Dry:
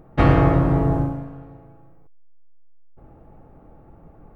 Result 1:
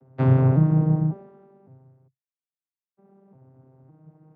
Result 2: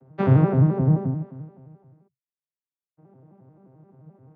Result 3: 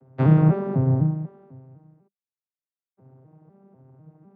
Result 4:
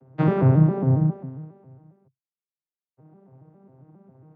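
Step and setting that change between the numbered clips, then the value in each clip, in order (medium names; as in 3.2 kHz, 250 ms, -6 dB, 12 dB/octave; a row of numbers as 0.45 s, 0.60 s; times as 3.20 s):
vocoder on a broken chord, a note every: 554 ms, 87 ms, 249 ms, 136 ms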